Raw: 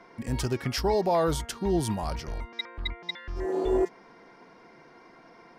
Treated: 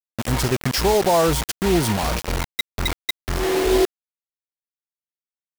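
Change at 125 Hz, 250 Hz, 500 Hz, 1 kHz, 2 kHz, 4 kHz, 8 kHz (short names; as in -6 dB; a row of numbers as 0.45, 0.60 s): +7.5, +7.0, +7.0, +8.0, +11.0, +10.0, +12.5 dB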